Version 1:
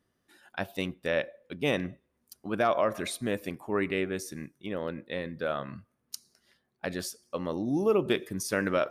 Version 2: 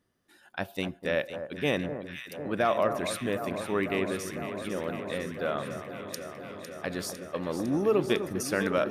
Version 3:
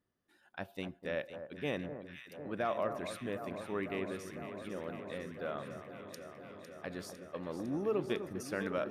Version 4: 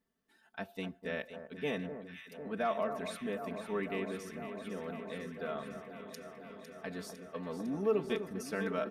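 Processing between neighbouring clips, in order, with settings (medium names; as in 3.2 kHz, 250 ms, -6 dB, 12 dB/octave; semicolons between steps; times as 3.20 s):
echo whose repeats swap between lows and highs 252 ms, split 1.4 kHz, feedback 89%, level -9 dB
treble shelf 4.1 kHz -6.5 dB; trim -8.5 dB
comb 4.5 ms, depth 84%; trim -1.5 dB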